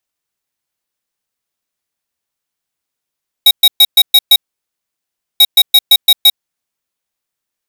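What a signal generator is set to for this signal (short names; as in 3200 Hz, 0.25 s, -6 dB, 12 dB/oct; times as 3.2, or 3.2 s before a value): beep pattern square 3800 Hz, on 0.05 s, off 0.12 s, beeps 6, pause 1.04 s, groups 2, -5 dBFS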